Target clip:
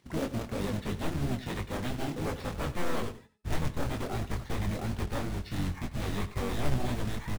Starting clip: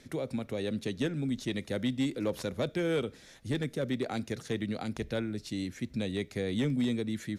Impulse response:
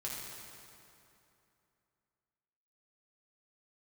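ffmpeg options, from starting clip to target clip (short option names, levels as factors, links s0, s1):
-filter_complex "[0:a]agate=range=0.158:threshold=0.00282:ratio=16:detection=peak,highpass=86,aeval=exprs='0.0944*sin(PI/2*2.82*val(0)/0.0944)':c=same,acrossover=split=4400[s0][s1];[s1]acompressor=threshold=0.00447:ratio=4:attack=1:release=60[s2];[s0][s2]amix=inputs=2:normalize=0,afftdn=nr=28:nf=-38,asubboost=boost=5:cutoff=110,acompressor=mode=upward:threshold=0.00891:ratio=2.5,acrusher=bits=2:mode=log:mix=0:aa=0.000001,bandreject=f=431.9:t=h:w=4,bandreject=f=863.8:t=h:w=4,bandreject=f=1295.7:t=h:w=4,bandreject=f=1727.6:t=h:w=4,bandreject=f=2159.5:t=h:w=4,bandreject=f=2591.4:t=h:w=4,bandreject=f=3023.3:t=h:w=4,bandreject=f=3455.2:t=h:w=4,bandreject=f=3887.1:t=h:w=4,bandreject=f=4319:t=h:w=4,bandreject=f=4750.9:t=h:w=4,bandreject=f=5182.8:t=h:w=4,bandreject=f=5614.7:t=h:w=4,bandreject=f=6046.6:t=h:w=4,bandreject=f=6478.5:t=h:w=4,bandreject=f=6910.4:t=h:w=4,bandreject=f=7342.3:t=h:w=4,bandreject=f=7774.2:t=h:w=4,bandreject=f=8206.1:t=h:w=4,bandreject=f=8638:t=h:w=4,bandreject=f=9069.9:t=h:w=4,bandreject=f=9501.8:t=h:w=4,bandreject=f=9933.7:t=h:w=4,bandreject=f=10365.6:t=h:w=4,bandreject=f=10797.5:t=h:w=4,flanger=delay=20:depth=5.4:speed=3,asplit=3[s3][s4][s5];[s4]asetrate=22050,aresample=44100,atempo=2,volume=1[s6];[s5]asetrate=35002,aresample=44100,atempo=1.25992,volume=0.316[s7];[s3][s6][s7]amix=inputs=3:normalize=0,asplit=2[s8][s9];[s9]aecho=0:1:98:0.168[s10];[s8][s10]amix=inputs=2:normalize=0,volume=0.376"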